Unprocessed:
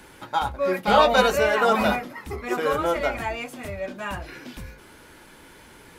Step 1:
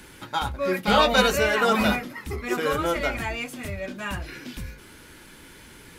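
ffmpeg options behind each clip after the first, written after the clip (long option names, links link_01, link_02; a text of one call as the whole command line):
ffmpeg -i in.wav -af "equalizer=frequency=740:width=0.79:gain=-8,volume=3.5dB" out.wav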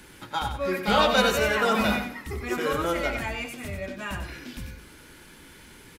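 ffmpeg -i in.wav -af "aecho=1:1:94|188|282:0.422|0.105|0.0264,volume=-2.5dB" out.wav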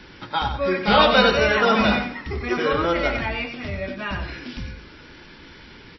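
ffmpeg -i in.wav -af "volume=5.5dB" -ar 16000 -c:a libmp3lame -b:a 24k out.mp3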